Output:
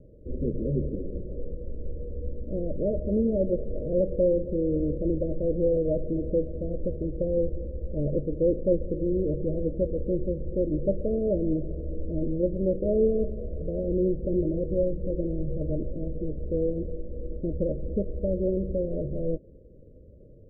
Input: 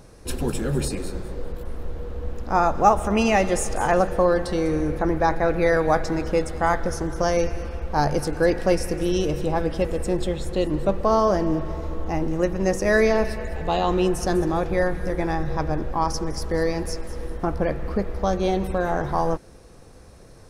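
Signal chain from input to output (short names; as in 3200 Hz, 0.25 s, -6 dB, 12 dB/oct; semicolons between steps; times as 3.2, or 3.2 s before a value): Chebyshev low-pass 620 Hz, order 10; gain -2.5 dB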